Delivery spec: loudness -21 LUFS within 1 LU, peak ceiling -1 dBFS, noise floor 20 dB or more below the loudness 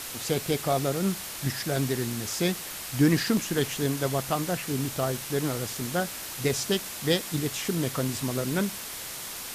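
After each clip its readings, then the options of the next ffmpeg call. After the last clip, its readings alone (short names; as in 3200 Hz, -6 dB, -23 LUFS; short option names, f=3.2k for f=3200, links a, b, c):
noise floor -38 dBFS; noise floor target -48 dBFS; loudness -28.0 LUFS; peak -10.5 dBFS; loudness target -21.0 LUFS
-> -af "afftdn=nr=10:nf=-38"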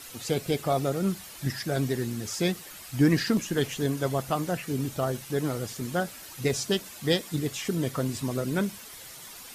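noise floor -45 dBFS; noise floor target -49 dBFS
-> -af "afftdn=nr=6:nf=-45"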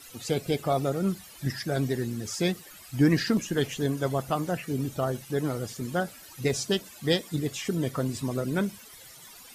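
noise floor -49 dBFS; loudness -29.0 LUFS; peak -11.0 dBFS; loudness target -21.0 LUFS
-> -af "volume=8dB"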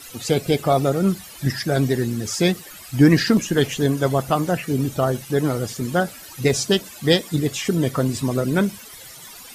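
loudness -21.0 LUFS; peak -3.0 dBFS; noise floor -41 dBFS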